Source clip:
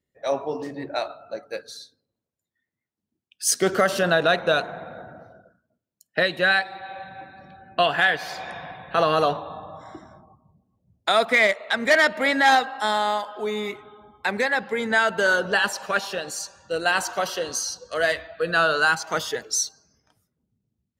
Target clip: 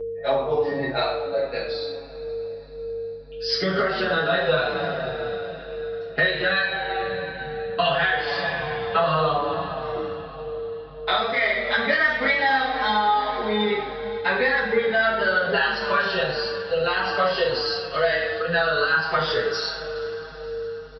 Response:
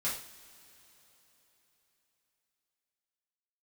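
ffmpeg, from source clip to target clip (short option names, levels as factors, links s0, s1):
-filter_complex "[0:a]aresample=11025,aresample=44100[s0];[1:a]atrim=start_sample=2205,asetrate=38367,aresample=44100[s1];[s0][s1]afir=irnorm=-1:irlink=0,aeval=exprs='val(0)+0.0251*sin(2*PI*460*n/s)':c=same,acompressor=threshold=0.0891:ratio=6,aeval=exprs='val(0)+0.00355*(sin(2*PI*50*n/s)+sin(2*PI*2*50*n/s)/2+sin(2*PI*3*50*n/s)/3+sin(2*PI*4*50*n/s)/4+sin(2*PI*5*50*n/s)/5)':c=same,asplit=2[s2][s3];[s3]adelay=6.3,afreqshift=-1.7[s4];[s2][s4]amix=inputs=2:normalize=1,volume=1.88"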